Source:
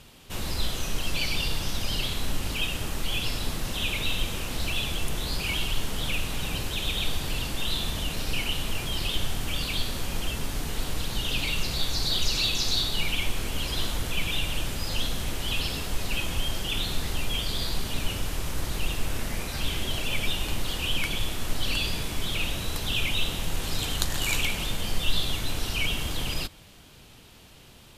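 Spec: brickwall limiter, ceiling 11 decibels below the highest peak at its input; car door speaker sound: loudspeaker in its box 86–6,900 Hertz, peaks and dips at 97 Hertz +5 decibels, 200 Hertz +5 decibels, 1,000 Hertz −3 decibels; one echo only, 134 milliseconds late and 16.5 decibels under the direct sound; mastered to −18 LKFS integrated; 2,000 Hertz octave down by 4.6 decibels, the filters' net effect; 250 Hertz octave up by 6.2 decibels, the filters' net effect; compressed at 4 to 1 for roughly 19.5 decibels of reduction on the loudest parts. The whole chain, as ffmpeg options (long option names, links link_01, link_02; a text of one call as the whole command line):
ffmpeg -i in.wav -af "equalizer=frequency=250:width_type=o:gain=5.5,equalizer=frequency=2000:width_type=o:gain=-6.5,acompressor=threshold=-40dB:ratio=4,alimiter=level_in=10.5dB:limit=-24dB:level=0:latency=1,volume=-10.5dB,highpass=86,equalizer=frequency=97:width_type=q:width=4:gain=5,equalizer=frequency=200:width_type=q:width=4:gain=5,equalizer=frequency=1000:width_type=q:width=4:gain=-3,lowpass=frequency=6900:width=0.5412,lowpass=frequency=6900:width=1.3066,aecho=1:1:134:0.15,volume=28dB" out.wav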